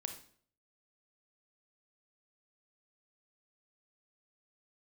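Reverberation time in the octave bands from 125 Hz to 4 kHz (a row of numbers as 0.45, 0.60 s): 0.65, 0.60, 0.60, 0.50, 0.50, 0.45 s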